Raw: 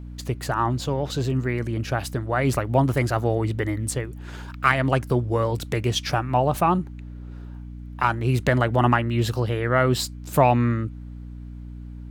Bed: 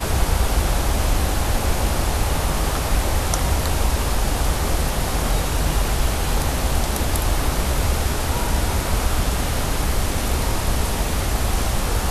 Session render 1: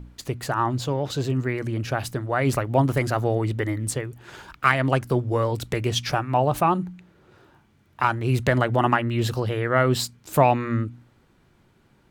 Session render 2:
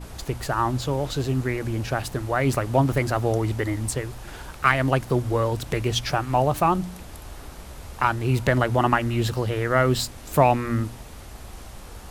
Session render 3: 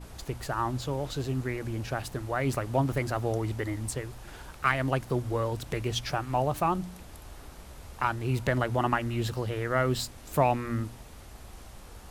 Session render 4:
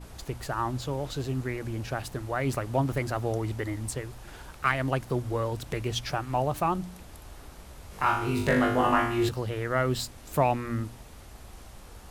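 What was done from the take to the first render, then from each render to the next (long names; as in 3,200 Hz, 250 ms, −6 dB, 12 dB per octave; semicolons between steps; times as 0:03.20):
hum removal 60 Hz, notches 5
mix in bed −19.5 dB
level −6.5 dB
0:07.89–0:09.29: flutter between parallel walls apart 3.4 metres, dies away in 0.58 s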